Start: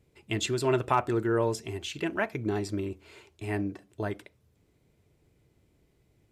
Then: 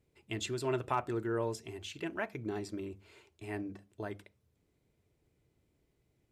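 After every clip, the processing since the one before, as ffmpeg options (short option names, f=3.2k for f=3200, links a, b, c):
-af "bandreject=f=50:t=h:w=6,bandreject=f=100:t=h:w=6,bandreject=f=150:t=h:w=6,bandreject=f=200:t=h:w=6,volume=-7.5dB"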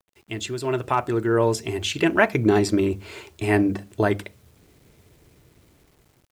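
-af "dynaudnorm=f=620:g=5:m=13.5dB,acrusher=bits=10:mix=0:aa=0.000001,volume=6.5dB"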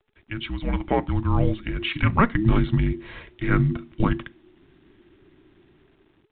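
-af "afreqshift=-440" -ar 8000 -c:a pcm_mulaw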